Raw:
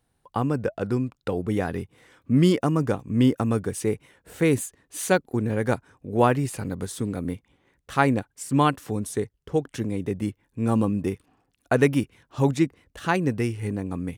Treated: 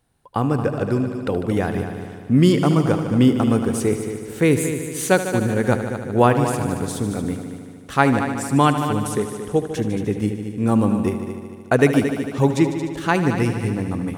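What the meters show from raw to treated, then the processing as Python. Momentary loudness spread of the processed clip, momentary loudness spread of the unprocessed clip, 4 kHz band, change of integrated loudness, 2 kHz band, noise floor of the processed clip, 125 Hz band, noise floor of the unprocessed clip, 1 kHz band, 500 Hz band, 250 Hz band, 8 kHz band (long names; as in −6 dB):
9 LU, 11 LU, +5.0 dB, +5.0 dB, +5.0 dB, −38 dBFS, +5.0 dB, −73 dBFS, +5.0 dB, +5.0 dB, +5.5 dB, +5.0 dB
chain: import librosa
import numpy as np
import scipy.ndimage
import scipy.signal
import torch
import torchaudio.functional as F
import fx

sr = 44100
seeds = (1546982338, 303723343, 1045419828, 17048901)

y = fx.echo_heads(x, sr, ms=75, heads='all three', feedback_pct=57, wet_db=-13)
y = y * 10.0 ** (4.0 / 20.0)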